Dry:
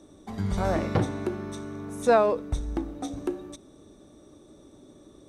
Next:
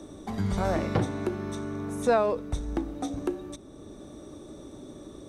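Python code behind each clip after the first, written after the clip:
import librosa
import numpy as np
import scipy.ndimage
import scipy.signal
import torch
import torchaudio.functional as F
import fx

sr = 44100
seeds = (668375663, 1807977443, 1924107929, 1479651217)

y = fx.band_squash(x, sr, depth_pct=40)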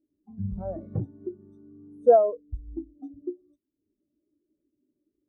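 y = fx.high_shelf(x, sr, hz=9500.0, db=11.0)
y = fx.spectral_expand(y, sr, expansion=2.5)
y = y * 10.0 ** (4.0 / 20.0)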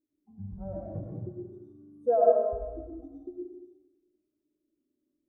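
y = fx.rev_freeverb(x, sr, rt60_s=1.2, hf_ratio=0.95, predelay_ms=55, drr_db=-3.5)
y = y * 10.0 ** (-9.0 / 20.0)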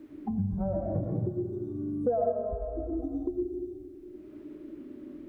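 y = fx.band_squash(x, sr, depth_pct=100)
y = y * 10.0 ** (6.0 / 20.0)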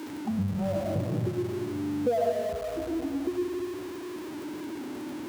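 y = x + 0.5 * 10.0 ** (-35.0 / 20.0) * np.sign(x)
y = scipy.signal.sosfilt(scipy.signal.butter(4, 81.0, 'highpass', fs=sr, output='sos'), y)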